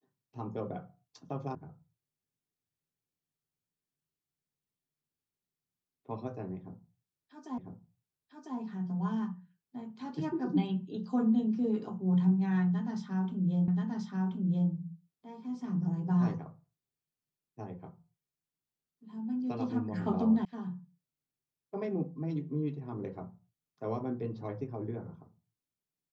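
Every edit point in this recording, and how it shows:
1.55 s: sound stops dead
7.58 s: repeat of the last 1 s
13.68 s: repeat of the last 1.03 s
20.45 s: sound stops dead

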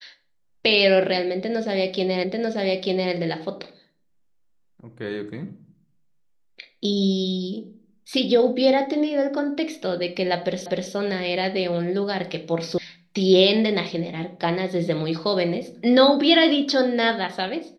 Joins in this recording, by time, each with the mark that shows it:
2.24 s: repeat of the last 0.89 s
10.66 s: repeat of the last 0.25 s
12.78 s: sound stops dead

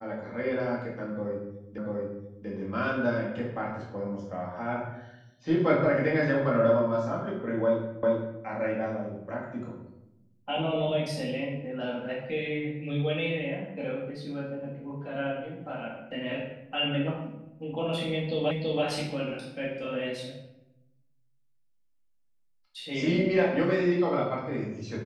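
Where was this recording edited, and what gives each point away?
1.78 s: repeat of the last 0.69 s
8.03 s: repeat of the last 0.39 s
18.51 s: repeat of the last 0.33 s

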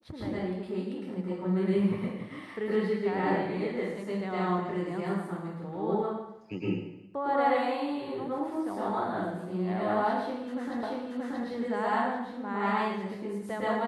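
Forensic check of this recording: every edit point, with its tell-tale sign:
10.83 s: repeat of the last 0.63 s

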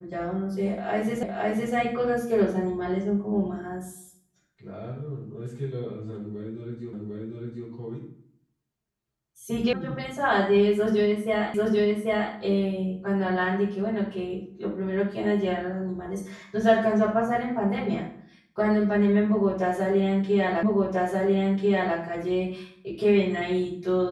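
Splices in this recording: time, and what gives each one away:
1.23 s: repeat of the last 0.51 s
6.93 s: repeat of the last 0.75 s
9.73 s: sound stops dead
11.54 s: repeat of the last 0.79 s
20.63 s: repeat of the last 1.34 s

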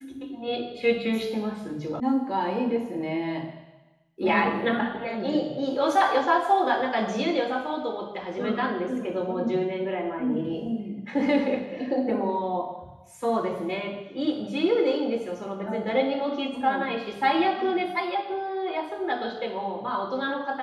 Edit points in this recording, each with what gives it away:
2.00 s: sound stops dead

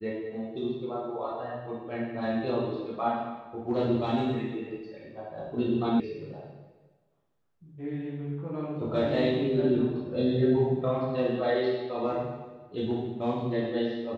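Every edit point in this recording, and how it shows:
6.00 s: sound stops dead

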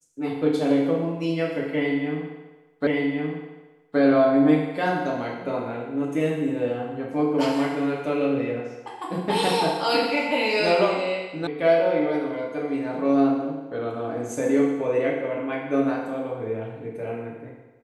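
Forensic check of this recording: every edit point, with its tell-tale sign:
2.87 s: repeat of the last 1.12 s
11.47 s: sound stops dead

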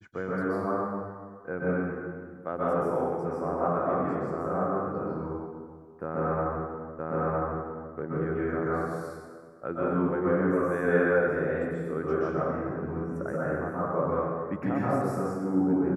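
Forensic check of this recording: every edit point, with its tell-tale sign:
6.99 s: repeat of the last 0.96 s

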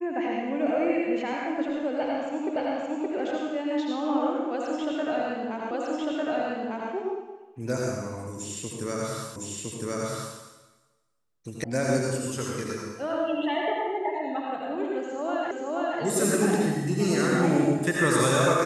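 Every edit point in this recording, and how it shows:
2.56 s: repeat of the last 0.57 s
5.71 s: repeat of the last 1.2 s
9.36 s: repeat of the last 1.01 s
11.64 s: sound stops dead
15.51 s: repeat of the last 0.48 s

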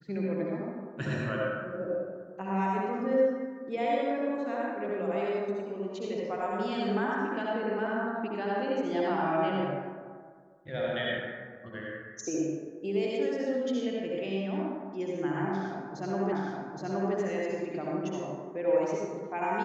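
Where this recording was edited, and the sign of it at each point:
16.32 s: repeat of the last 0.82 s

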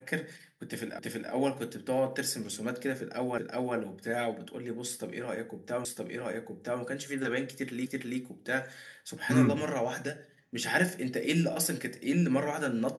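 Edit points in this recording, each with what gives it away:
0.99 s: repeat of the last 0.33 s
3.38 s: repeat of the last 0.38 s
5.85 s: repeat of the last 0.97 s
7.86 s: repeat of the last 0.33 s

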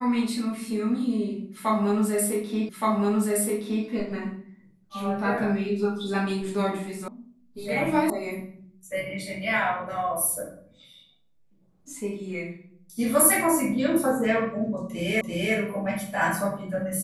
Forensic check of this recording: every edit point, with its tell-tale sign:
2.69 s: repeat of the last 1.17 s
7.08 s: sound stops dead
8.10 s: sound stops dead
15.21 s: repeat of the last 0.34 s

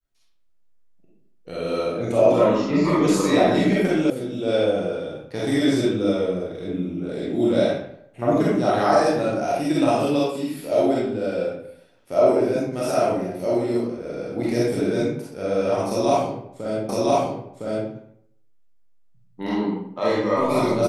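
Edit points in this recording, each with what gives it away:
4.10 s: sound stops dead
16.89 s: repeat of the last 1.01 s

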